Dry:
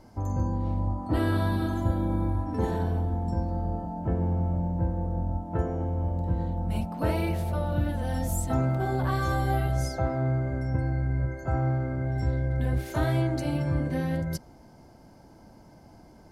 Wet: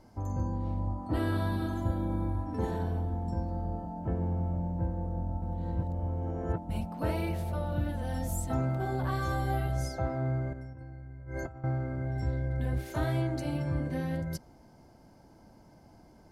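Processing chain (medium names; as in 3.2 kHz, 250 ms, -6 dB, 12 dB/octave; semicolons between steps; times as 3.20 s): 5.42–6.69 s: reverse; 10.53–11.64 s: compressor with a negative ratio -38 dBFS, ratio -1; trim -4.5 dB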